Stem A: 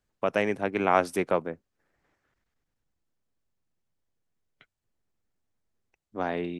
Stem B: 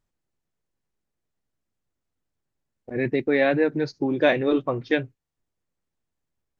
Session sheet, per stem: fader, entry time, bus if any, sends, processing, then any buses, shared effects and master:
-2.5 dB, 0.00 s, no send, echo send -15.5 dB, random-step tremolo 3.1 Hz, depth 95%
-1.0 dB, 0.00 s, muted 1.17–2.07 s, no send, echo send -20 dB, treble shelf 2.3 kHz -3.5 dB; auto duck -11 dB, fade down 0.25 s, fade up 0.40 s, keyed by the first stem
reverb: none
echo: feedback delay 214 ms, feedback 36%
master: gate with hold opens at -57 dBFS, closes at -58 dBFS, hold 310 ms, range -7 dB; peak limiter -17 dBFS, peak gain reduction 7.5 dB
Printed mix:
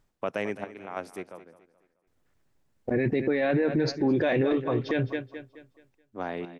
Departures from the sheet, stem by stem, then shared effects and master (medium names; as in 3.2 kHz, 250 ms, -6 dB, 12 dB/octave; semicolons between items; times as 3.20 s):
stem B -1.0 dB -> +10.0 dB; master: missing gate with hold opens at -57 dBFS, closes at -58 dBFS, hold 310 ms, range -7 dB